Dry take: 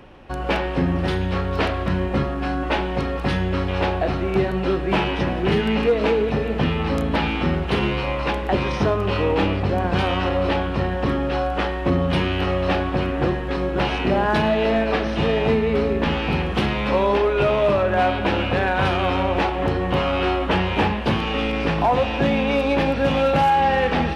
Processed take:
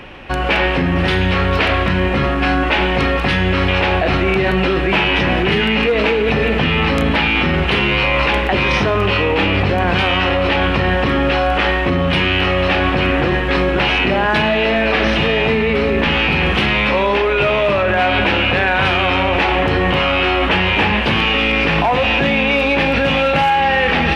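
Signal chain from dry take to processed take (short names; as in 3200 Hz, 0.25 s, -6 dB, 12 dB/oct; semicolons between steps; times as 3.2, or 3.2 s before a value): bell 2400 Hz +10 dB 1.4 oct; in parallel at -1 dB: negative-ratio compressor -22 dBFS, ratio -0.5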